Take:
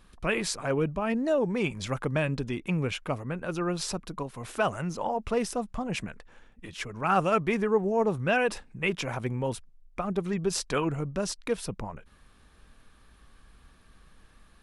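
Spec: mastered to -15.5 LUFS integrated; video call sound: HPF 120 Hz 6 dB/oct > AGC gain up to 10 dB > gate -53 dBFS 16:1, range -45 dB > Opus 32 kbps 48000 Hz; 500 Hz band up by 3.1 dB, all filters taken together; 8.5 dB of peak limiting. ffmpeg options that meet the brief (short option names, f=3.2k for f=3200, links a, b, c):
-af "equalizer=f=500:t=o:g=4,alimiter=limit=-18.5dB:level=0:latency=1,highpass=f=120:p=1,dynaudnorm=m=10dB,agate=range=-45dB:threshold=-53dB:ratio=16,volume=14.5dB" -ar 48000 -c:a libopus -b:a 32k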